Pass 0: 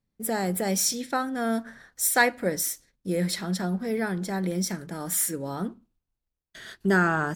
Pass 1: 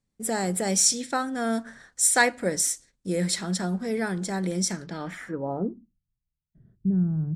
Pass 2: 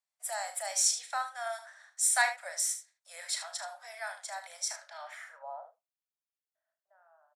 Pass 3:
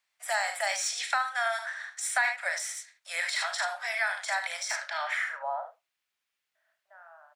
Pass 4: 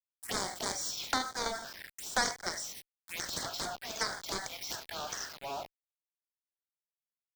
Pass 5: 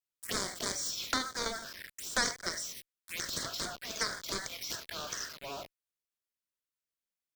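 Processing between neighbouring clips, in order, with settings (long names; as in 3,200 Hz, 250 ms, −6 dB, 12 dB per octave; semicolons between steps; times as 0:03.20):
low-pass filter sweep 8,200 Hz → 150 Hz, 0:04.71–0:06.01
Butterworth high-pass 600 Hz 96 dB per octave; on a send: ambience of single reflections 35 ms −9.5 dB, 76 ms −11 dB; on the sum: level −6.5 dB
de-essing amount 95%; parametric band 2,200 Hz +14 dB 2.4 octaves; downward compressor 4 to 1, threshold −30 dBFS, peak gain reduction 12.5 dB; level +4.5 dB
centre clipping without the shift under −36.5 dBFS; harmonic generator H 7 −10 dB, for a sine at −13.5 dBFS; phaser swept by the level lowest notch 380 Hz, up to 2,700 Hz, full sweep at −31.5 dBFS
parametric band 810 Hz −12 dB 0.4 octaves; pitch vibrato 12 Hz 27 cents; level +1 dB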